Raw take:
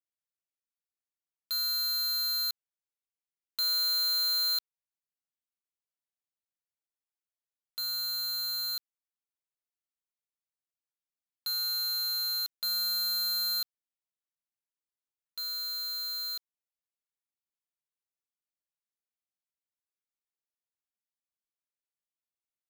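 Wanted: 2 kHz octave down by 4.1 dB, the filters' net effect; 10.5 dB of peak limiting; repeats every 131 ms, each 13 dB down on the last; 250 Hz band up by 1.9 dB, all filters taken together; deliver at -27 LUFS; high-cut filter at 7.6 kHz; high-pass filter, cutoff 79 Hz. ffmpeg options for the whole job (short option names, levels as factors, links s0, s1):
-af "highpass=79,lowpass=7600,equalizer=f=250:t=o:g=4,equalizer=f=2000:t=o:g=-7.5,alimiter=level_in=4.73:limit=0.0631:level=0:latency=1,volume=0.211,aecho=1:1:131|262|393:0.224|0.0493|0.0108,volume=4.22"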